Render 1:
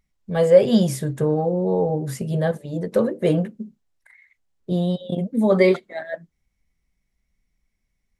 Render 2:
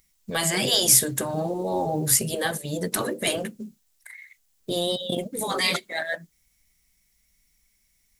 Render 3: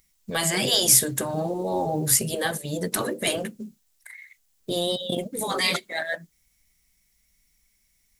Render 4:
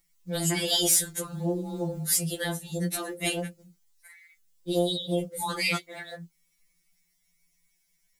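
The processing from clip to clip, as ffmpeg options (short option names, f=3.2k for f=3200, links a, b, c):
-af "crystalizer=i=7.5:c=0,afftfilt=real='re*lt(hypot(re,im),0.562)':imag='im*lt(hypot(re,im),0.562)':win_size=1024:overlap=0.75,acrusher=bits=9:mode=log:mix=0:aa=0.000001"
-af anull
-filter_complex "[0:a]acrossover=split=950[a][b];[b]volume=11dB,asoftclip=hard,volume=-11dB[c];[a][c]amix=inputs=2:normalize=0,afftfilt=real='re*2.83*eq(mod(b,8),0)':imag='im*2.83*eq(mod(b,8),0)':win_size=2048:overlap=0.75,volume=-2dB"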